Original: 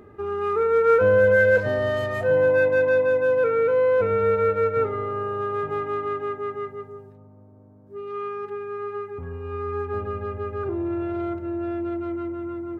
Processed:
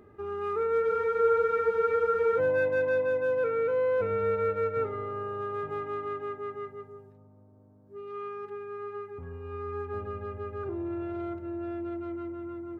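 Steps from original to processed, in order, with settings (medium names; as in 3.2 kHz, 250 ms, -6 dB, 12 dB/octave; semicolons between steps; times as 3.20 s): spectral freeze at 0.85 s, 1.52 s; trim -7 dB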